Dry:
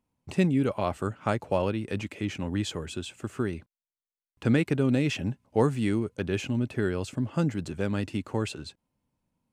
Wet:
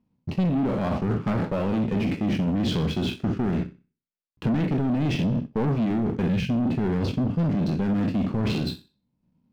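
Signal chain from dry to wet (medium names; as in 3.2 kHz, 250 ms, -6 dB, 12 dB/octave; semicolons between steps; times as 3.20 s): spectral sustain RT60 0.42 s; steep low-pass 5.5 kHz 48 dB/octave; waveshaping leveller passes 2; peaking EQ 190 Hz +11.5 dB 1.4 oct; on a send: flutter echo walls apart 10.7 m, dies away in 0.3 s; on the sum: time-frequency box 6.29–6.50 s, 220–1500 Hz -25 dB; bass shelf 340 Hz +3.5 dB; reverse; compression 6:1, threshold -15 dBFS, peak gain reduction 13.5 dB; reverse; peak limiter -13.5 dBFS, peak gain reduction 6.5 dB; saturation -22 dBFS, distortion -11 dB; transient shaper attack +2 dB, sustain -6 dB; trim +2 dB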